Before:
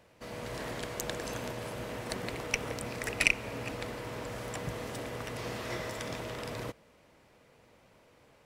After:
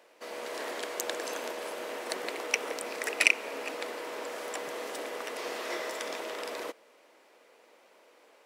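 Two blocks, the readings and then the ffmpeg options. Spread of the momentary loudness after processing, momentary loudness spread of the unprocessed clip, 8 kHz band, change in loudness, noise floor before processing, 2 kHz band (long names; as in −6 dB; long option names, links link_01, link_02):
11 LU, 10 LU, +3.0 dB, +2.5 dB, −62 dBFS, +3.0 dB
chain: -af "highpass=frequency=330:width=0.5412,highpass=frequency=330:width=1.3066,volume=3dB"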